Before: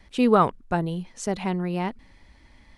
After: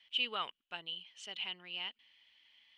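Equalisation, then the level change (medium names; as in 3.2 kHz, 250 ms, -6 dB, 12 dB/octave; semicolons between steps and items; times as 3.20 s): band-pass filter 3 kHz, Q 12; +10.0 dB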